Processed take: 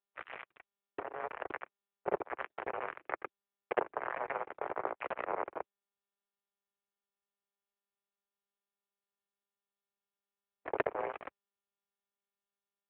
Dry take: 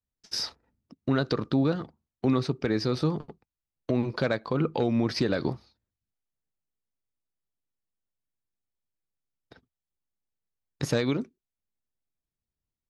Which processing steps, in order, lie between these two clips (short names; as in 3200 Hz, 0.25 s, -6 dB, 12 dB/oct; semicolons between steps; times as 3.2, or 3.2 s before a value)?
spectral dilation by 0.24 s; compressor 12:1, threshold -28 dBFS, peak gain reduction 14.5 dB; bit-crush 4-bit; mistuned SSB +160 Hz 190–2400 Hz; treble ducked by the level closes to 950 Hz, closed at -34 dBFS; expander -51 dBFS; pump 122 bpm, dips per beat 1, -8 dB, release 89 ms; grains, spray 0.109 s; gain +7 dB; AMR-NB 7.4 kbps 8000 Hz